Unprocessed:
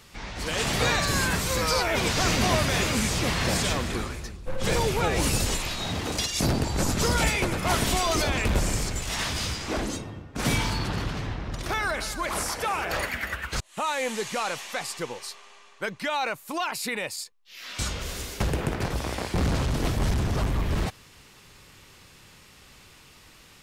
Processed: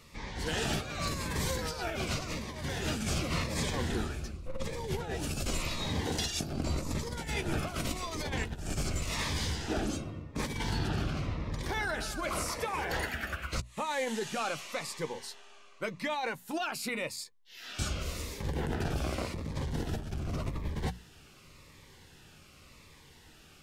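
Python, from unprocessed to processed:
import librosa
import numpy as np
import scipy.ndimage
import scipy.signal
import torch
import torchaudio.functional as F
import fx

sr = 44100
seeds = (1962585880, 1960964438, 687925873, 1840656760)

y = fx.high_shelf(x, sr, hz=3300.0, db=-6.0)
y = fx.hum_notches(y, sr, base_hz=60, count=4)
y = fx.over_compress(y, sr, threshold_db=-28.0, ratio=-0.5)
y = fx.doubler(y, sr, ms=13.0, db=-12.0)
y = fx.notch_cascade(y, sr, direction='falling', hz=0.88)
y = F.gain(torch.from_numpy(y), -3.5).numpy()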